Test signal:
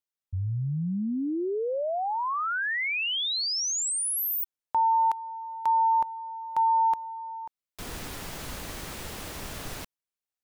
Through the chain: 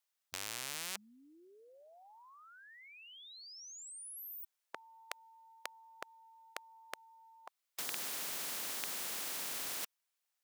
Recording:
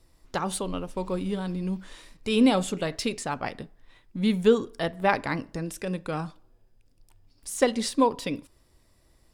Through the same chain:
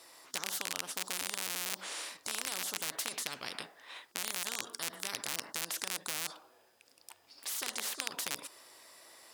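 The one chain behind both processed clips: rattle on loud lows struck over -34 dBFS, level -12 dBFS; high-pass 690 Hz 12 dB/octave; spectrum-flattening compressor 10:1; trim -5.5 dB

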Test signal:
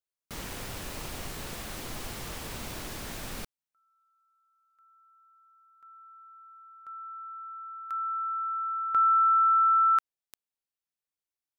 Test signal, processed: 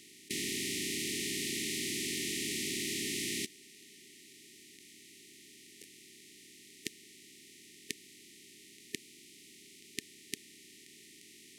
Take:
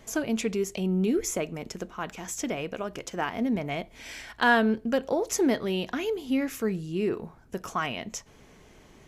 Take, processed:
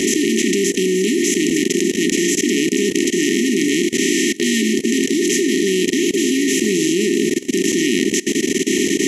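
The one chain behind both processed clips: spectral levelling over time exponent 0.2; Chebyshev band-pass 280–9800 Hz, order 2; FFT band-reject 430–1800 Hz; thinning echo 877 ms, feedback 31%, high-pass 300 Hz, level -10 dB; in parallel at -1.5 dB: peak limiter -14.5 dBFS; on the sum: level held to a coarse grid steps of 20 dB; trim +3.5 dB

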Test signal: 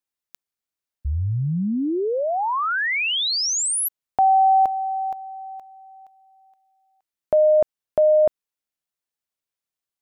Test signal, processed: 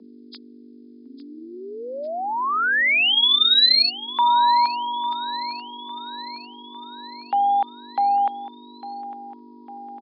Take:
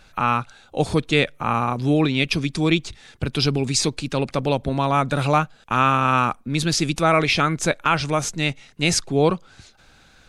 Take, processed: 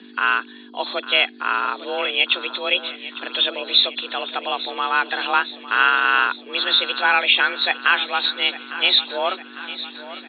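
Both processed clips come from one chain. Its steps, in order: knee-point frequency compression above 3 kHz 4:1; band-pass filter 2.4 kHz, Q 0.61; hum 50 Hz, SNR 22 dB; frequency shift +190 Hz; feedback delay 853 ms, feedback 59%, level -15 dB; trim +4.5 dB

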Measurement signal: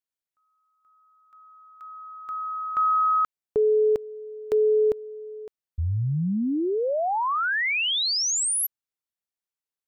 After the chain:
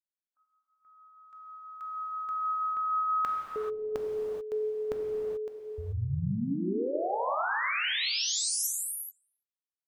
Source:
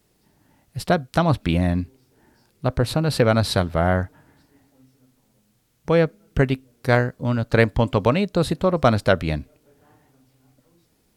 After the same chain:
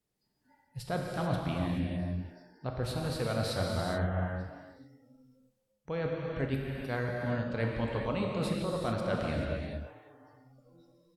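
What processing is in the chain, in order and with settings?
speakerphone echo 340 ms, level -28 dB; reverse; compression 5:1, threshold -34 dBFS; reverse; spectral noise reduction 21 dB; gated-style reverb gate 460 ms flat, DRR -1.5 dB

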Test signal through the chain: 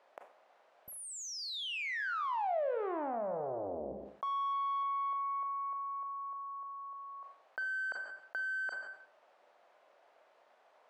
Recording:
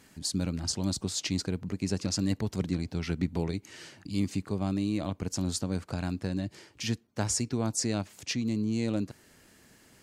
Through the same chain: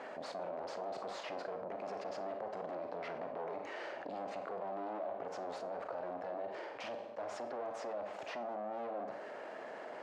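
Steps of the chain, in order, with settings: valve stage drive 41 dB, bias 0.6; ladder band-pass 710 Hz, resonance 55%; Schroeder reverb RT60 0.41 s, combs from 30 ms, DRR 8 dB; level flattener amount 70%; trim +12.5 dB

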